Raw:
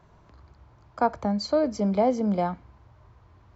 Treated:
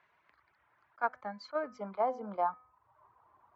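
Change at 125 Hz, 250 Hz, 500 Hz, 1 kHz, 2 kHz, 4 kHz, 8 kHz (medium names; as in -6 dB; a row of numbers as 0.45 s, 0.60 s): under -20 dB, -20.5 dB, -11.0 dB, -5.5 dB, -2.0 dB, -17.0 dB, no reading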